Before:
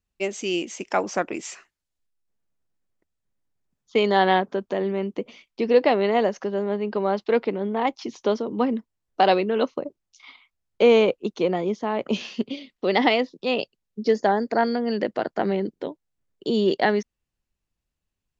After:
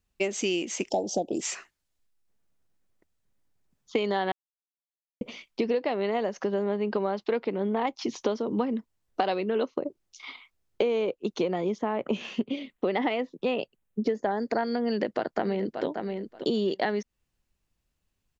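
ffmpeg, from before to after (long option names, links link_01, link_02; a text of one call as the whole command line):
ffmpeg -i in.wav -filter_complex "[0:a]asplit=3[link_01][link_02][link_03];[link_01]afade=type=out:start_time=0.88:duration=0.02[link_04];[link_02]asuperstop=centerf=1600:order=12:qfactor=0.67,afade=type=in:start_time=0.88:duration=0.02,afade=type=out:start_time=1.4:duration=0.02[link_05];[link_03]afade=type=in:start_time=1.4:duration=0.02[link_06];[link_04][link_05][link_06]amix=inputs=3:normalize=0,asettb=1/sr,asplit=3[link_07][link_08][link_09];[link_07]atrim=end=9.554[link_10];[link_08]atrim=start=9.55:end=11.17,asetpts=PTS-STARTPTS,afade=type=in:duration=0.004:curve=qsin,afade=type=out:start_time=1.616:duration=0.004:curve=qsin,equalizer=frequency=370:width=1.8:gain=5.5[link_11];[link_09]atrim=start=11.166[link_12];[link_10][link_11]acrossfade=duration=0.004:curve1=hsin:curve2=qsin[link_13];[link_13][link_12]acrossfade=duration=0.004:curve1=qsin:curve2=hsin,asettb=1/sr,asplit=3[link_14][link_15][link_16];[link_14]atrim=end=11.784[link_17];[link_15]atrim=start=11.78:end=14.31,asetpts=PTS-STARTPTS,afade=type=in:duration=0.004:curve=qsin,afade=type=out:start_time=2.526:duration=0.004:curve=qsin,equalizer=frequency=4900:width_type=o:width=0.86:gain=-13.5[link_18];[link_16]atrim=start=14.306[link_19];[link_17][link_18]acrossfade=duration=0.004:curve1=hsin:curve2=qsin[link_20];[link_20][link_19]acrossfade=duration=0.004:curve1=qsin:curve2=hsin,asplit=2[link_21][link_22];[link_22]afade=type=in:start_time=14.87:duration=0.01,afade=type=out:start_time=15.86:duration=0.01,aecho=0:1:580|1160:0.211349|0.0317023[link_23];[link_21][link_23]amix=inputs=2:normalize=0,asplit=3[link_24][link_25][link_26];[link_24]atrim=end=4.32,asetpts=PTS-STARTPTS,afade=type=out:start_time=4.316:duration=0.004:curve=hsin[link_27];[link_25]atrim=start=4.32:end=5.21,asetpts=PTS-STARTPTS,volume=0[link_28];[link_26]atrim=start=5.21,asetpts=PTS-STARTPTS,afade=type=in:duration=0.004:curve=hsin[link_29];[link_27][link_28][link_29]concat=n=3:v=0:a=1,acompressor=threshold=-28dB:ratio=12,volume=4.5dB" out.wav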